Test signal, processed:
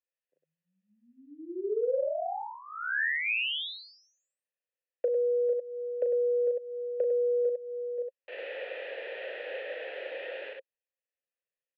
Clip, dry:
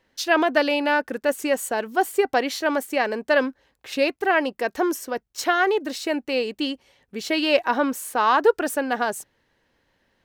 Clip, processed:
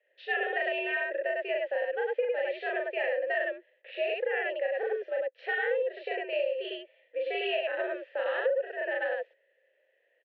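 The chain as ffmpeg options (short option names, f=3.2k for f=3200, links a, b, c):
-filter_complex "[0:a]highpass=f=320:t=q:w=0.5412,highpass=f=320:t=q:w=1.307,lowpass=f=3.4k:t=q:w=0.5176,lowpass=f=3.4k:t=q:w=0.7071,lowpass=f=3.4k:t=q:w=1.932,afreqshift=85,asplit=3[a][b][c];[a]bandpass=f=530:t=q:w=8,volume=0dB[d];[b]bandpass=f=1.84k:t=q:w=8,volume=-6dB[e];[c]bandpass=f=2.48k:t=q:w=8,volume=-9dB[f];[d][e][f]amix=inputs=3:normalize=0,asplit=2[g][h];[h]aecho=0:1:37.9|102:1|0.891[i];[g][i]amix=inputs=2:normalize=0,acompressor=threshold=-29dB:ratio=6,volume=2.5dB"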